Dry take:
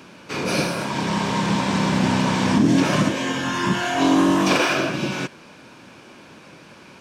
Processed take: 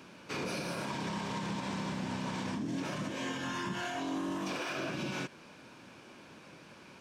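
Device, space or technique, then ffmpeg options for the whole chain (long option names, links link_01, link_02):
stacked limiters: -af "alimiter=limit=-13.5dB:level=0:latency=1:release=346,alimiter=limit=-16.5dB:level=0:latency=1:release=158,alimiter=limit=-19.5dB:level=0:latency=1,volume=-8.5dB"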